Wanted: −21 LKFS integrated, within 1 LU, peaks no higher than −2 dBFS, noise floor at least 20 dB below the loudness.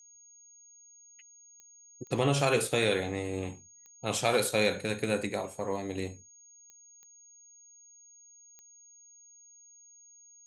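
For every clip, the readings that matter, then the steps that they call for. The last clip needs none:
number of clicks 7; interfering tone 6,600 Hz; level of the tone −54 dBFS; integrated loudness −30.0 LKFS; sample peak −12.5 dBFS; target loudness −21.0 LKFS
→ click removal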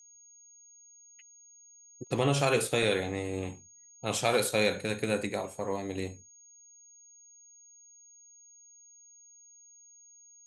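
number of clicks 0; interfering tone 6,600 Hz; level of the tone −54 dBFS
→ notch filter 6,600 Hz, Q 30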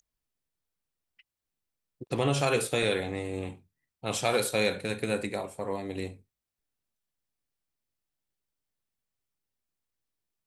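interfering tone none found; integrated loudness −30.0 LKFS; sample peak −12.5 dBFS; target loudness −21.0 LKFS
→ level +9 dB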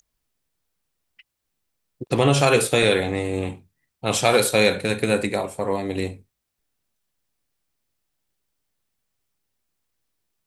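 integrated loudness −21.0 LKFS; sample peak −3.5 dBFS; background noise floor −80 dBFS

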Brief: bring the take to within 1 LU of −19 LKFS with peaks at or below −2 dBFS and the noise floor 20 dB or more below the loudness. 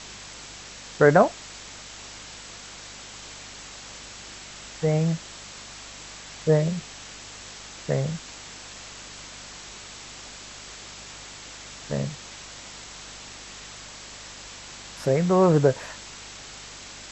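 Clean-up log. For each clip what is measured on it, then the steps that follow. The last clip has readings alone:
mains hum 50 Hz; hum harmonics up to 250 Hz; level of the hum −52 dBFS; background noise floor −42 dBFS; target noise floor −44 dBFS; integrated loudness −23.5 LKFS; sample peak −4.0 dBFS; target loudness −19.0 LKFS
→ hum removal 50 Hz, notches 5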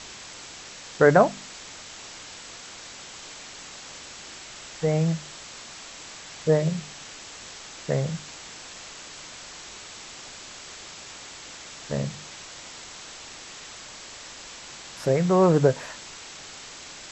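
mains hum none found; background noise floor −43 dBFS; target noise floor −44 dBFS
→ noise reduction from a noise print 6 dB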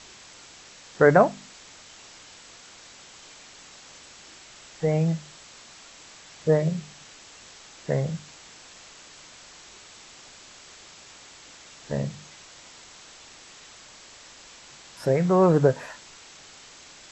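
background noise floor −49 dBFS; integrated loudness −23.5 LKFS; sample peak −4.5 dBFS; target loudness −19.0 LKFS
→ level +4.5 dB
brickwall limiter −2 dBFS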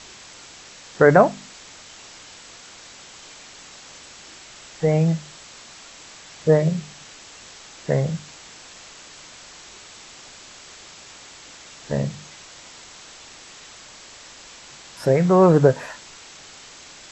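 integrated loudness −19.5 LKFS; sample peak −2.0 dBFS; background noise floor −44 dBFS

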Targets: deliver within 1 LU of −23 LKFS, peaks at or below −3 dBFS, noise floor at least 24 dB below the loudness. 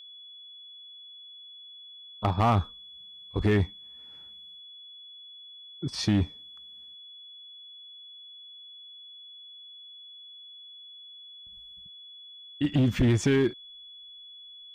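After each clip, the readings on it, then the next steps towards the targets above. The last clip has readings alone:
share of clipped samples 0.7%; peaks flattened at −17.5 dBFS; interfering tone 3,400 Hz; level of the tone −45 dBFS; integrated loudness −27.0 LKFS; sample peak −17.5 dBFS; target loudness −23.0 LKFS
→ clipped peaks rebuilt −17.5 dBFS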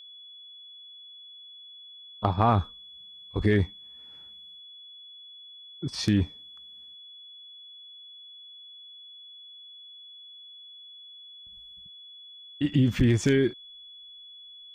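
share of clipped samples 0.0%; interfering tone 3,400 Hz; level of the tone −45 dBFS
→ notch filter 3,400 Hz, Q 30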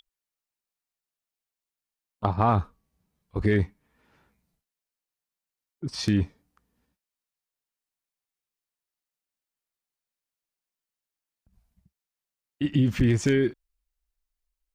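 interfering tone none found; integrated loudness −26.0 LKFS; sample peak −8.5 dBFS; target loudness −23.0 LKFS
→ level +3 dB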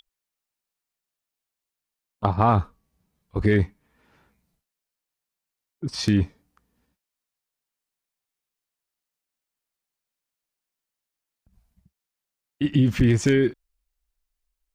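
integrated loudness −23.0 LKFS; sample peak −5.5 dBFS; background noise floor −87 dBFS

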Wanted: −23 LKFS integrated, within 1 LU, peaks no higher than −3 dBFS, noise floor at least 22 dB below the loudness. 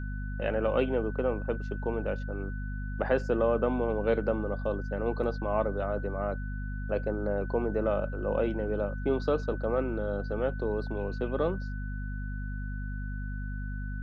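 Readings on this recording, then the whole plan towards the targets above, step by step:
mains hum 50 Hz; hum harmonics up to 250 Hz; level of the hum −32 dBFS; interfering tone 1,500 Hz; level of the tone −45 dBFS; integrated loudness −31.5 LKFS; sample peak −13.0 dBFS; target loudness −23.0 LKFS
→ mains-hum notches 50/100/150/200/250 Hz
notch filter 1,500 Hz, Q 30
level +8.5 dB

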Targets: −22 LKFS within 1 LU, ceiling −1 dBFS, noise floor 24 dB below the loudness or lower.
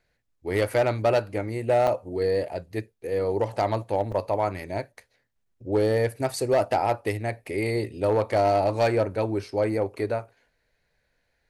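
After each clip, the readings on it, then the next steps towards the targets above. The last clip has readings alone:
share of clipped samples 0.8%; peaks flattened at −15.0 dBFS; number of dropouts 2; longest dropout 4.2 ms; integrated loudness −26.0 LKFS; sample peak −15.0 dBFS; target loudness −22.0 LKFS
→ clipped peaks rebuilt −15 dBFS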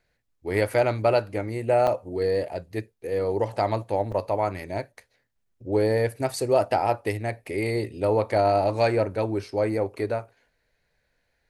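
share of clipped samples 0.0%; number of dropouts 2; longest dropout 4.2 ms
→ repair the gap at 0:01.87/0:04.12, 4.2 ms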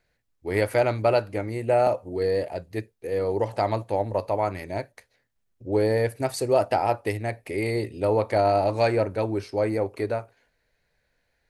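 number of dropouts 0; integrated loudness −25.5 LKFS; sample peak −9.0 dBFS; target loudness −22.0 LKFS
→ level +3.5 dB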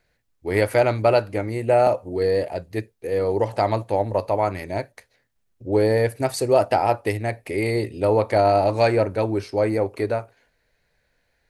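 integrated loudness −22.0 LKFS; sample peak −5.5 dBFS; background noise floor −70 dBFS

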